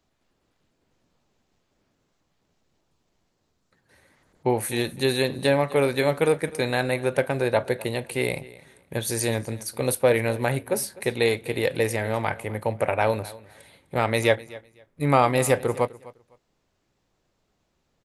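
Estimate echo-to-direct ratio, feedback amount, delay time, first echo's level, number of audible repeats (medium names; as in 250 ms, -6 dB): -20.0 dB, 20%, 253 ms, -20.0 dB, 2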